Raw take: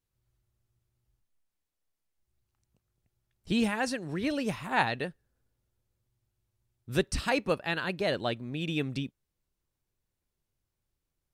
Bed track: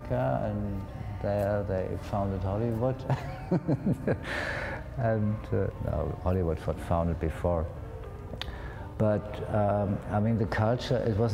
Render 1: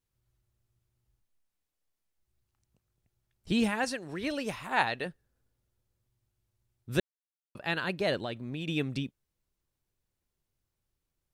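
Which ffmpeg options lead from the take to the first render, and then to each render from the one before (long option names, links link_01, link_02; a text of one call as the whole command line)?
ffmpeg -i in.wav -filter_complex "[0:a]asettb=1/sr,asplit=3[link_01][link_02][link_03];[link_01]atrim=end=3.844[link_04];[link_02]atrim=start=3.84:end=5.06,asetpts=PTS-STARTPTS,afade=type=in:duration=0.004:curve=qsin,afade=type=out:start_time=1.216:duration=0.004:curve=qsin,equalizer=frequency=150:width_type=o:width=2.1:gain=-7[link_05];[link_03]atrim=start=5.056[link_06];[link_04][link_05]acrossfade=duration=0.004:curve1=hsin:curve2=qsin[link_07];[link_07][link_06]acrossfade=duration=0.004:curve1=qsin:curve2=hsin,asettb=1/sr,asplit=3[link_08][link_09][link_10];[link_08]atrim=end=8.184[link_11];[link_09]atrim=start=8.18:end=8.68,asetpts=PTS-STARTPTS,afade=type=in:duration=0.004:curve=qsin,afade=type=out:start_time=0.496:duration=0.004:curve=qsin,acompressor=threshold=-31dB:ratio=6:attack=3.2:release=140:knee=1:detection=peak[link_12];[link_10]atrim=start=8.676[link_13];[link_11][link_12]acrossfade=duration=0.004:curve1=hsin:curve2=qsin[link_14];[link_14][link_13]acrossfade=duration=0.004:curve1=qsin:curve2=hsin,asplit=3[link_15][link_16][link_17];[link_15]atrim=end=7,asetpts=PTS-STARTPTS,afade=type=out:start_time=6.996:duration=0.004:curve=hsin[link_18];[link_16]atrim=start=7:end=7.55,asetpts=PTS-STARTPTS,volume=0[link_19];[link_17]atrim=start=7.55,asetpts=PTS-STARTPTS,afade=type=in:duration=0.004:curve=hsin[link_20];[link_18][link_19][link_20]concat=n=3:v=0:a=1" out.wav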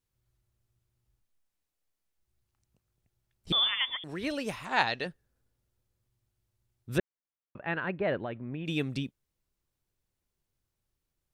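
ffmpeg -i in.wav -filter_complex "[0:a]asettb=1/sr,asplit=3[link_01][link_02][link_03];[link_01]atrim=end=3.524[link_04];[link_02]atrim=start=3.52:end=4.04,asetpts=PTS-STARTPTS,afade=type=in:duration=0.004:curve=qsin,afade=type=out:start_time=0.516:duration=0.004:curve=qsin,lowpass=frequency=3100:width_type=q:width=0.5098,lowpass=frequency=3100:width_type=q:width=0.6013,lowpass=frequency=3100:width_type=q:width=0.9,lowpass=frequency=3100:width_type=q:width=2.563,afreqshift=-3700[link_05];[link_03]atrim=start=4.036[link_06];[link_04][link_05]acrossfade=duration=0.004:curve1=hsin:curve2=qsin[link_07];[link_07][link_06]acrossfade=duration=0.004:curve1=qsin:curve2=hsin,asettb=1/sr,asplit=3[link_08][link_09][link_10];[link_08]atrim=end=4.654[link_11];[link_09]atrim=start=4.65:end=5.07,asetpts=PTS-STARTPTS,afade=type=in:duration=0.004:curve=qsin,afade=type=out:start_time=0.416:duration=0.004:curve=qsin,lowpass=frequency=5700:width_type=q:width=3.2[link_12];[link_10]atrim=start=5.066[link_13];[link_11][link_12]acrossfade=duration=0.004:curve1=hsin:curve2=qsin[link_14];[link_14][link_13]acrossfade=duration=0.004:curve1=qsin:curve2=hsin,asettb=1/sr,asplit=3[link_15][link_16][link_17];[link_15]atrim=end=6.984[link_18];[link_16]atrim=start=6.98:end=8.66,asetpts=PTS-STARTPTS,afade=type=in:duration=0.004:curve=qsin,afade=type=out:start_time=1.676:duration=0.004:curve=qsin,lowpass=frequency=2300:width=0.5412,lowpass=frequency=2300:width=1.3066[link_19];[link_17]atrim=start=8.656[link_20];[link_18][link_19]acrossfade=duration=0.004:curve1=hsin:curve2=qsin[link_21];[link_21][link_20]acrossfade=duration=0.004:curve1=qsin:curve2=hsin" out.wav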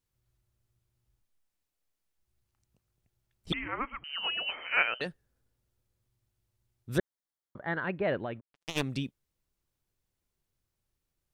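ffmpeg -i in.wav -filter_complex "[0:a]asettb=1/sr,asplit=3[link_01][link_02][link_03];[link_01]atrim=end=3.534[link_04];[link_02]atrim=start=3.53:end=5.01,asetpts=PTS-STARTPTS,afade=type=in:duration=0.004:curve=qsin,afade=type=out:start_time=1.476:duration=0.004:curve=qsin,lowpass=frequency=2700:width_type=q:width=0.5098,lowpass=frequency=2700:width_type=q:width=0.6013,lowpass=frequency=2700:width_type=q:width=0.9,lowpass=frequency=2700:width_type=q:width=2.563,afreqshift=-3200[link_05];[link_03]atrim=start=5.006[link_06];[link_04][link_05]acrossfade=duration=0.004:curve1=hsin:curve2=qsin[link_07];[link_07][link_06]acrossfade=duration=0.004:curve1=qsin:curve2=hsin,asplit=3[link_08][link_09][link_10];[link_08]afade=type=out:start_time=6.96:duration=0.02[link_11];[link_09]asuperstop=centerf=2600:order=4:qfactor=3.2,afade=type=in:start_time=6.96:duration=0.02,afade=type=out:start_time=7.83:duration=0.02[link_12];[link_10]afade=type=in:start_time=7.83:duration=0.02[link_13];[link_11][link_12][link_13]amix=inputs=3:normalize=0,asplit=3[link_14][link_15][link_16];[link_14]afade=type=out:start_time=8.39:duration=0.02[link_17];[link_15]acrusher=bits=3:mix=0:aa=0.5,afade=type=in:start_time=8.39:duration=0.02,afade=type=out:start_time=8.81:duration=0.02[link_18];[link_16]afade=type=in:start_time=8.81:duration=0.02[link_19];[link_17][link_18][link_19]amix=inputs=3:normalize=0" out.wav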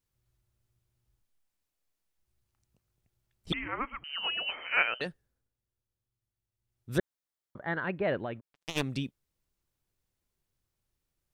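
ffmpeg -i in.wav -filter_complex "[0:a]asplit=3[link_01][link_02][link_03];[link_01]atrim=end=5.51,asetpts=PTS-STARTPTS,afade=type=out:start_time=5.07:duration=0.44:silence=0.298538[link_04];[link_02]atrim=start=5.51:end=6.55,asetpts=PTS-STARTPTS,volume=-10.5dB[link_05];[link_03]atrim=start=6.55,asetpts=PTS-STARTPTS,afade=type=in:duration=0.44:silence=0.298538[link_06];[link_04][link_05][link_06]concat=n=3:v=0:a=1" out.wav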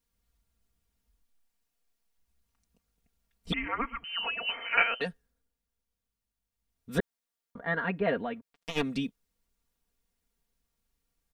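ffmpeg -i in.wav -filter_complex "[0:a]acrossover=split=3400[link_01][link_02];[link_02]acompressor=threshold=-44dB:ratio=4:attack=1:release=60[link_03];[link_01][link_03]amix=inputs=2:normalize=0,aecho=1:1:4.3:0.88" out.wav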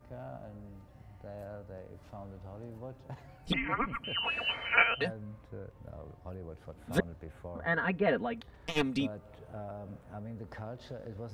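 ffmpeg -i in.wav -i bed.wav -filter_complex "[1:a]volume=-16.5dB[link_01];[0:a][link_01]amix=inputs=2:normalize=0" out.wav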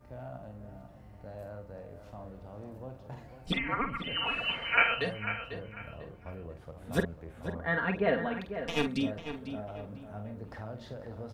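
ffmpeg -i in.wav -filter_complex "[0:a]asplit=2[link_01][link_02];[link_02]adelay=47,volume=-8dB[link_03];[link_01][link_03]amix=inputs=2:normalize=0,asplit=2[link_04][link_05];[link_05]adelay=496,lowpass=frequency=3400:poles=1,volume=-9.5dB,asplit=2[link_06][link_07];[link_07]adelay=496,lowpass=frequency=3400:poles=1,volume=0.31,asplit=2[link_08][link_09];[link_09]adelay=496,lowpass=frequency=3400:poles=1,volume=0.31[link_10];[link_04][link_06][link_08][link_10]amix=inputs=4:normalize=0" out.wav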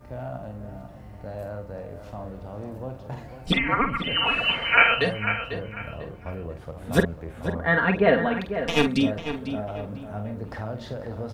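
ffmpeg -i in.wav -af "volume=9dB,alimiter=limit=-2dB:level=0:latency=1" out.wav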